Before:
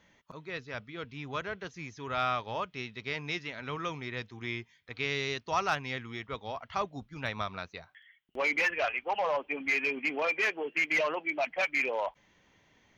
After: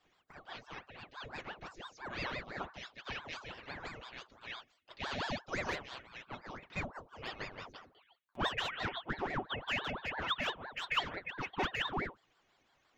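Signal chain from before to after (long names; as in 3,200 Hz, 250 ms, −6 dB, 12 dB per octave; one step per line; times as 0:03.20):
stiff-string resonator 85 Hz, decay 0.36 s, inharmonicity 0.03
ring modulator whose carrier an LFO sweeps 750 Hz, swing 80%, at 5.9 Hz
level +5 dB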